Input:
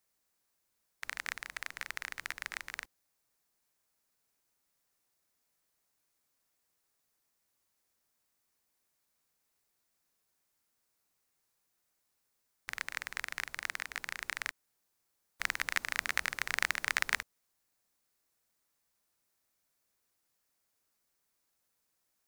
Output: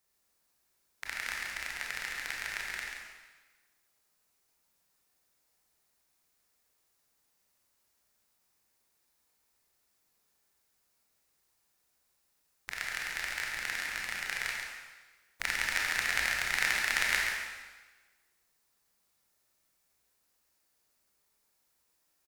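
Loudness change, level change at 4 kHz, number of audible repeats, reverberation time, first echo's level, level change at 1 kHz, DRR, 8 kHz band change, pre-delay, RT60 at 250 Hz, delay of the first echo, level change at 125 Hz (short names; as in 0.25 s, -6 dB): +4.0 dB, +5.0 dB, 1, 1.2 s, -7.0 dB, +2.0 dB, -3.0 dB, +4.5 dB, 21 ms, 1.2 s, 0.137 s, +5.5 dB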